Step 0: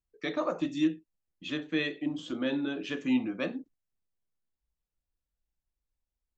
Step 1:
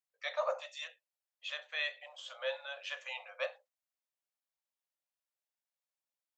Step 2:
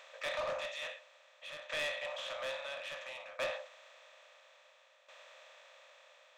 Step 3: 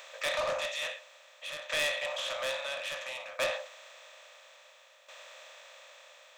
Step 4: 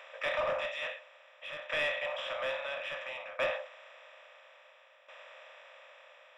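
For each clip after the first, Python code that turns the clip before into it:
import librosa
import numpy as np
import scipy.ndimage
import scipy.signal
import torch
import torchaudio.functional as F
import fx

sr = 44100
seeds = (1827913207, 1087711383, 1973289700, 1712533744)

y1 = scipy.signal.sosfilt(scipy.signal.cheby1(8, 1.0, 520.0, 'highpass', fs=sr, output='sos'), x)
y1 = y1 * librosa.db_to_amplitude(-1.5)
y2 = fx.bin_compress(y1, sr, power=0.4)
y2 = 10.0 ** (-30.5 / 20.0) * np.tanh(y2 / 10.0 ** (-30.5 / 20.0))
y2 = fx.tremolo_shape(y2, sr, shape='saw_down', hz=0.59, depth_pct=75)
y3 = fx.high_shelf(y2, sr, hz=6200.0, db=11.5)
y3 = y3 * librosa.db_to_amplitude(5.0)
y4 = scipy.signal.savgol_filter(y3, 25, 4, mode='constant')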